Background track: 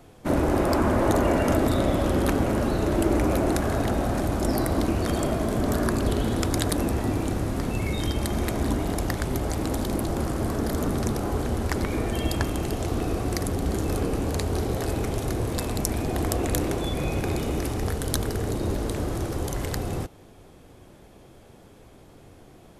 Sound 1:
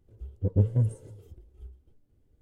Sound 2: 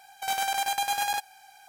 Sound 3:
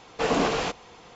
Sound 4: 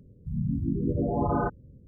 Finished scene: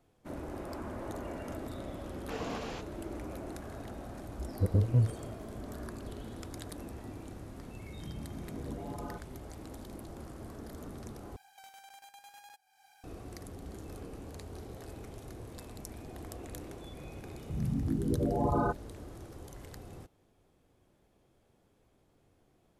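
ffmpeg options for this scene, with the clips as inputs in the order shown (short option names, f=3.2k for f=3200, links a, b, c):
-filter_complex "[4:a]asplit=2[a][b];[0:a]volume=-19dB[c];[1:a]alimiter=level_in=14dB:limit=-1dB:release=50:level=0:latency=1[d];[2:a]acompressor=threshold=-42dB:ratio=5:attack=2.9:release=264:knee=1:detection=rms[e];[b]equalizer=f=180:t=o:w=0.43:g=-4[f];[c]asplit=2[g][h];[g]atrim=end=11.364[i];[e]atrim=end=1.68,asetpts=PTS-STARTPTS,volume=-9.5dB[j];[h]atrim=start=13.036[k];[3:a]atrim=end=1.15,asetpts=PTS-STARTPTS,volume=-15.5dB,afade=t=in:d=0.004:c=hsin,afade=t=out:st=1.146:d=0.004:c=hsin,adelay=2100[l];[d]atrim=end=2.41,asetpts=PTS-STARTPTS,volume=-15dB,afade=t=in:d=0.004:c=hsin,afade=t=out:st=2.406:d=0.004:c=hsin,adelay=4180[m];[a]atrim=end=1.87,asetpts=PTS-STARTPTS,volume=-16.5dB,afade=t=in:d=0.004:c=hsin,afade=t=out:st=1.866:d=0.004:c=hsin,adelay=7690[n];[f]atrim=end=1.87,asetpts=PTS-STARTPTS,volume=-2.5dB,afade=t=in:d=0.004:c=hsin,afade=t=out:st=1.866:d=0.004:c=hsin,adelay=17230[o];[i][j]acrossfade=d=0.004:c1=hsin:c2=hsin[p];[p][k]acrossfade=d=0.004:c1=hsin:c2=hsin[q];[q][l][m][n][o]amix=inputs=5:normalize=0"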